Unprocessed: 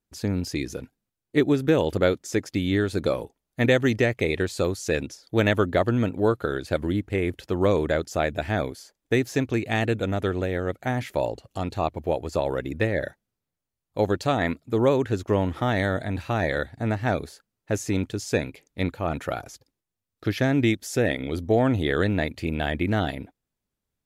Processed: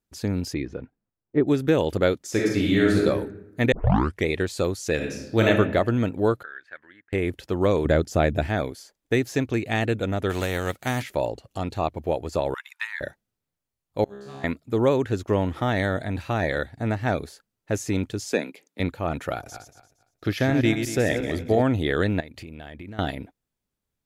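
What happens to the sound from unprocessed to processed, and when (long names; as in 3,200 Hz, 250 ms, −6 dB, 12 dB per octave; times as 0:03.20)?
0:00.53–0:01.46: low-pass filter 2,300 Hz → 1,100 Hz
0:02.30–0:03.04: thrown reverb, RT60 0.95 s, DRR −3 dB
0:03.72: tape start 0.54 s
0:04.95–0:05.48: thrown reverb, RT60 0.93 s, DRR −0.5 dB
0:06.43–0:07.13: resonant band-pass 1,700 Hz, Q 6.2
0:07.85–0:08.47: low-shelf EQ 400 Hz +9 dB
0:10.29–0:11.01: spectral envelope flattened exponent 0.6
0:12.54–0:13.01: linear-phase brick-wall high-pass 870 Hz
0:14.04–0:14.44: tuned comb filter 68 Hz, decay 1.7 s, mix 100%
0:18.32–0:18.80: Butterworth high-pass 180 Hz
0:19.35–0:21.64: feedback delay that plays each chunk backwards 116 ms, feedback 47%, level −7 dB
0:22.20–0:22.99: downward compressor 8 to 1, threshold −36 dBFS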